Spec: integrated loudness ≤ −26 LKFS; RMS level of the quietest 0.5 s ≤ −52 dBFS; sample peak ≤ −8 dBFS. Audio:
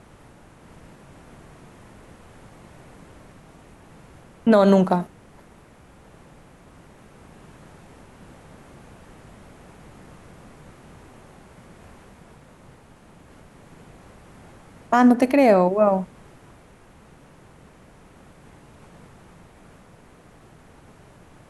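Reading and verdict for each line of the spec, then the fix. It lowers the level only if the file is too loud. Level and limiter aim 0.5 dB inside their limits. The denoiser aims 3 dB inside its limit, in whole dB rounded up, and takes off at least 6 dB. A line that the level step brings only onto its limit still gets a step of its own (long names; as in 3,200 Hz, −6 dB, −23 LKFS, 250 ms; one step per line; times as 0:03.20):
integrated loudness −18.0 LKFS: out of spec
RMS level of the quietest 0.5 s −50 dBFS: out of spec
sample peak −6.0 dBFS: out of spec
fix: level −8.5 dB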